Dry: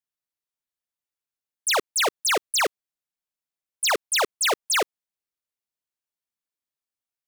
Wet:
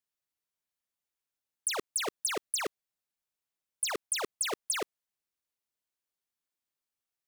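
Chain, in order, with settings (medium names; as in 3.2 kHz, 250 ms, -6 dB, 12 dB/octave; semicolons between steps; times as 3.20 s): compressor with a negative ratio -25 dBFS, ratio -0.5; trim -5 dB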